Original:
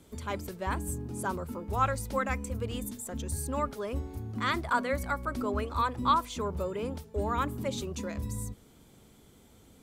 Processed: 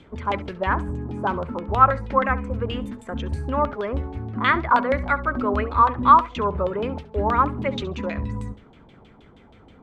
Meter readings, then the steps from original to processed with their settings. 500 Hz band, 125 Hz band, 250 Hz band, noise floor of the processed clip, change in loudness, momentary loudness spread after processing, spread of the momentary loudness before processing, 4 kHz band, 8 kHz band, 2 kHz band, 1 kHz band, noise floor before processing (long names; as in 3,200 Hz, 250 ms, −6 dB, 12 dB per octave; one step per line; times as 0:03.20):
+8.5 dB, +7.0 dB, +7.5 dB, −51 dBFS, +10.0 dB, 12 LU, 9 LU, +4.5 dB, below −15 dB, +9.5 dB, +12.0 dB, −58 dBFS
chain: auto-filter low-pass saw down 6.3 Hz 730–3,300 Hz
flutter between parallel walls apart 11.7 metres, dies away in 0.23 s
level +7 dB